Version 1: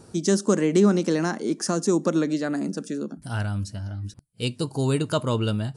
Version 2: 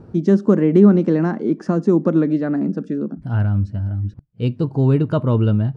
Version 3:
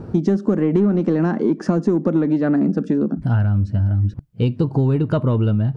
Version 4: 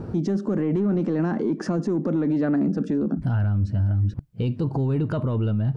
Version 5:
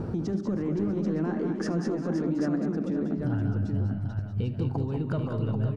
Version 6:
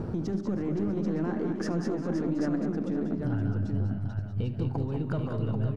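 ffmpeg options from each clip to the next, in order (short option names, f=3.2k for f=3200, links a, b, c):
-af "lowpass=2k,lowshelf=f=400:g=10.5"
-filter_complex "[0:a]asplit=2[a][b];[b]asoftclip=type=tanh:threshold=-14.5dB,volume=-5dB[c];[a][c]amix=inputs=2:normalize=0,acompressor=threshold=-19dB:ratio=6,volume=4.5dB"
-af "alimiter=limit=-16.5dB:level=0:latency=1:release=18"
-filter_complex "[0:a]acompressor=threshold=-29dB:ratio=6,asplit=2[a][b];[b]aecho=0:1:75|188|204|353|519|787:0.126|0.376|0.355|0.106|0.355|0.501[c];[a][c]amix=inputs=2:normalize=0,volume=1.5dB"
-af "aeval=exprs='if(lt(val(0),0),0.708*val(0),val(0))':c=same"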